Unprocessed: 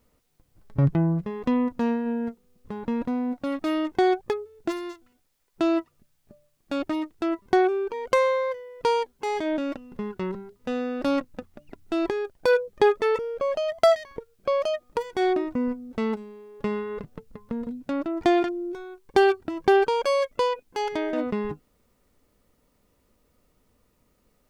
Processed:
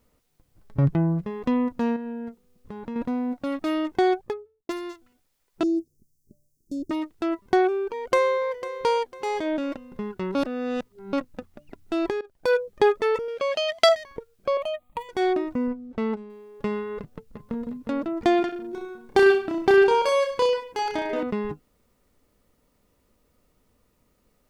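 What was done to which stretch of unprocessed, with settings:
1.96–2.96 s: compression 2:1, threshold -35 dBFS
4.08–4.69 s: studio fade out
5.63–6.91 s: Chebyshev band-stop 390–5800 Hz, order 3
7.62–8.48 s: echo throw 500 ms, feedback 35%, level -13.5 dB
10.35–11.13 s: reverse
12.21–12.69 s: fade in equal-power, from -20.5 dB
13.28–13.89 s: frequency weighting D
14.57–15.09 s: static phaser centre 1.5 kHz, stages 6
15.67–16.30 s: low-pass 2.5 kHz 6 dB/octave
16.99–17.68 s: echo throw 360 ms, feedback 50%, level -6.5 dB
18.46–21.23 s: reverse bouncing-ball echo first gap 30 ms, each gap 1.1×, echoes 5

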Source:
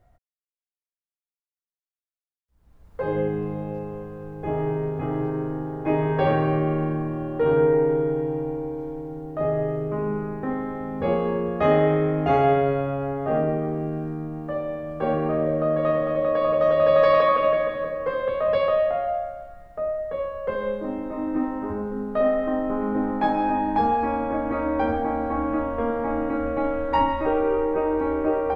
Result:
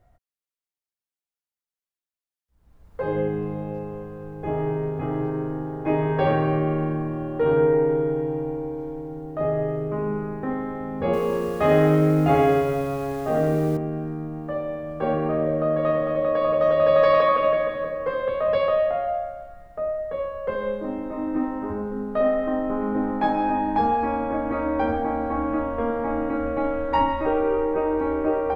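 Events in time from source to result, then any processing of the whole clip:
11.05–13.77 s: bit-crushed delay 84 ms, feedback 55%, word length 7-bit, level -5.5 dB

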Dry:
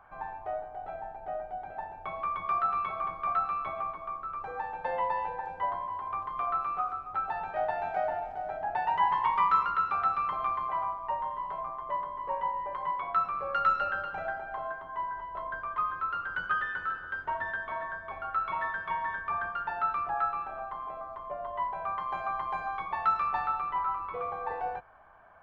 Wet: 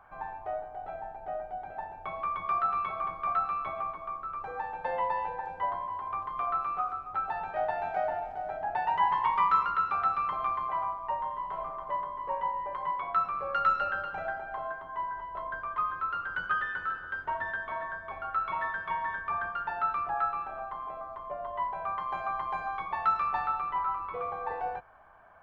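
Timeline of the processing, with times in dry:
11.44–11.84 s: reverb throw, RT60 0.87 s, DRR 3 dB

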